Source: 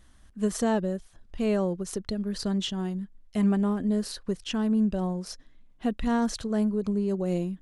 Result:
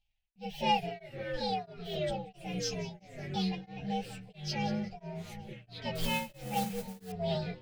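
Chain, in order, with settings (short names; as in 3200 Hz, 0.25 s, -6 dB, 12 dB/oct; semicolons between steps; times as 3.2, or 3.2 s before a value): inharmonic rescaling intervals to 124%; gate with hold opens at -47 dBFS; EQ curve 120 Hz 0 dB, 310 Hz -19 dB, 830 Hz +6 dB, 1200 Hz -25 dB, 2400 Hz +7 dB, 4000 Hz +13 dB, 10000 Hz -17 dB; split-band echo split 1200 Hz, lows 0.741 s, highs 0.185 s, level -15 dB; echoes that change speed 88 ms, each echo -4 st, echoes 3, each echo -6 dB; 5.95–7.12 modulation noise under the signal 12 dB; beating tremolo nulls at 1.5 Hz; gain +1 dB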